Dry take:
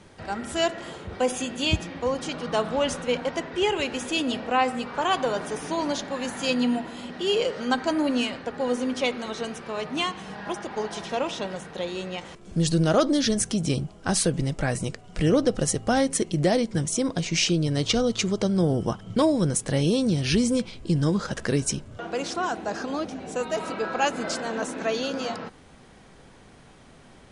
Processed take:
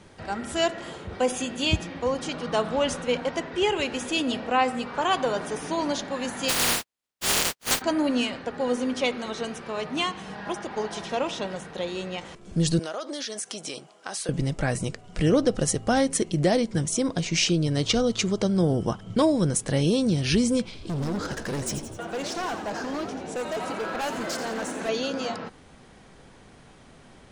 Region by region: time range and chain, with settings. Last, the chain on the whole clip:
6.48–7.8 spectral contrast lowered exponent 0.14 + gate -30 dBFS, range -52 dB
12.79–14.29 HPF 560 Hz + compressor, threshold -29 dBFS
20.65–24.89 hard clip -27 dBFS + frequency-shifting echo 85 ms, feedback 55%, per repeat +91 Hz, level -9 dB
whole clip: dry

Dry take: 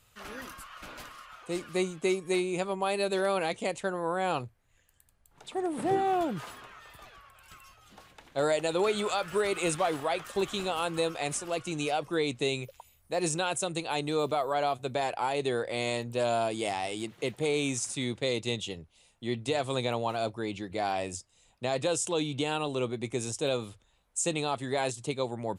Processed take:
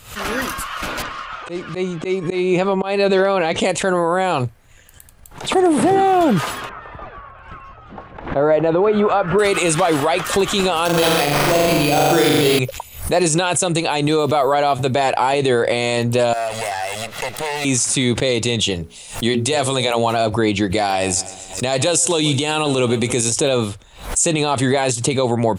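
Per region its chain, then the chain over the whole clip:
1.02–3.61 auto swell 0.285 s + air absorption 120 m
6.69–9.39 LPF 1300 Hz + compressor 2.5:1, threshold -32 dBFS
10.85–12.59 flutter echo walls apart 7.1 m, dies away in 1.3 s + sample-rate reducer 7100 Hz
16.33–17.65 minimum comb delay 1.5 ms + low shelf 400 Hz -12 dB + compressor 3:1, threshold -41 dBFS
18.75–20.13 high shelf 5000 Hz +9 dB + notches 60/120/180/240/300/360/420/480/540 Hz
20.7–23.33 high shelf 4100 Hz +9.5 dB + feedback echo 0.135 s, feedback 55%, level -21.5 dB
whole clip: maximiser +25.5 dB; backwards sustainer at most 120 dB/s; gain -6 dB

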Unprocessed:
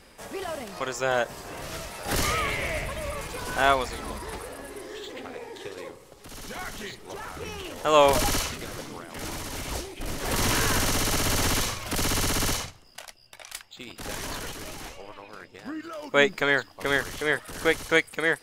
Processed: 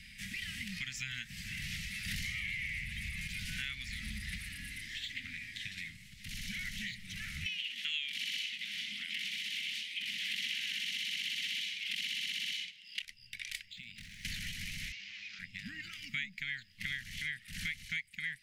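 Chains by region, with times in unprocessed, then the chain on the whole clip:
7.46–13.02 HPF 220 Hz 24 dB/oct + bell 3100 Hz +14.5 dB 1.1 oct
13.66–14.25 median filter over 3 samples + compressor 20:1, threshold -46 dBFS
14.92–15.39 delta modulation 32 kbps, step -43 dBFS + HPF 910 Hz 6 dB/oct
whole clip: Chebyshev band-stop 200–2000 Hz, order 4; tone controls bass -8 dB, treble -13 dB; compressor 6:1, threshold -46 dBFS; gain +9 dB

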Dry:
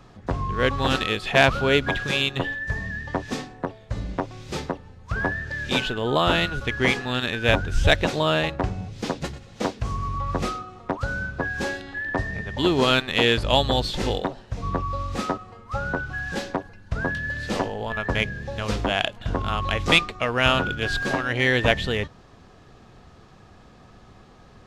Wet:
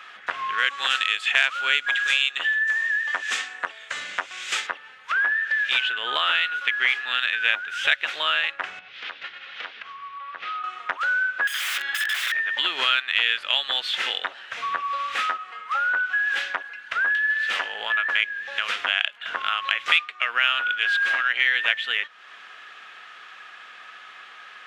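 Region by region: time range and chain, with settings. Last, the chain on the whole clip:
0.58–4.67 HPF 47 Hz + bell 7500 Hz +13.5 dB 0.87 oct
8.79–10.64 LPF 4500 Hz 24 dB/oct + compressor 4:1, threshold -40 dBFS + mismatched tape noise reduction encoder only
11.47–12.32 comb 6 ms, depth 76% + wrapped overs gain 27.5 dB
whole clip: HPF 890 Hz 12 dB/oct; band shelf 2100 Hz +14 dB; compressor 2.5:1, threshold -29 dBFS; gain +3.5 dB

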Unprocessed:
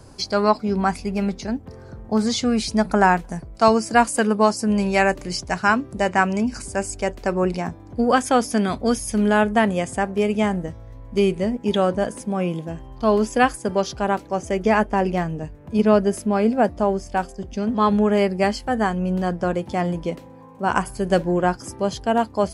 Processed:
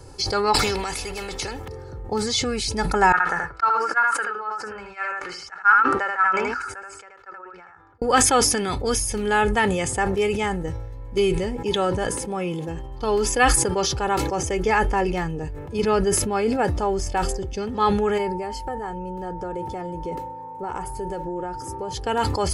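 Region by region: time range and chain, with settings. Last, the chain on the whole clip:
0.54–1.68 compressor 2:1, threshold -32 dBFS + spectral compressor 2:1
3.12–8.02 band-pass 1400 Hz, Q 7 + echo 79 ms -3.5 dB + three-band expander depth 100%
18.17–21.93 bell 3800 Hz -8 dB 2.5 oct + compressor 12:1, threshold -27 dBFS + whine 900 Hz -39 dBFS
whole clip: dynamic EQ 500 Hz, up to -6 dB, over -29 dBFS, Q 0.85; comb 2.3 ms, depth 67%; sustainer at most 34 dB/s

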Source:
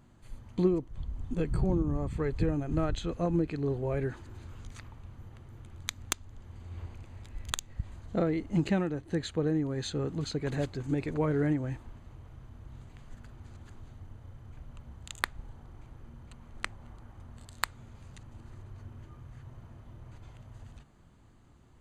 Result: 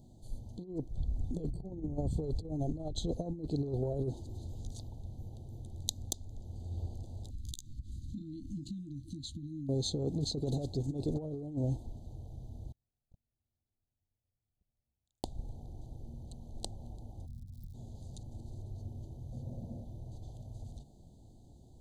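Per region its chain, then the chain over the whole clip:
7.3–9.69 doubler 15 ms -10 dB + compressor 12:1, threshold -39 dBFS + brick-wall FIR band-stop 330–1300 Hz
12.72–15.25 high shelf 4600 Hz -11.5 dB + gate -38 dBFS, range -44 dB + mismatched tape noise reduction encoder only
17.25–17.73 inverse Chebyshev band-stop 690–9900 Hz, stop band 60 dB + crackle 160/s -55 dBFS
19.32–19.85 Butterworth band-stop 2100 Hz, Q 1.6 + small resonant body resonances 220/520 Hz, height 11 dB, ringing for 30 ms
whole clip: elliptic band-stop 760–3800 Hz, stop band 40 dB; negative-ratio compressor -33 dBFS, ratio -0.5

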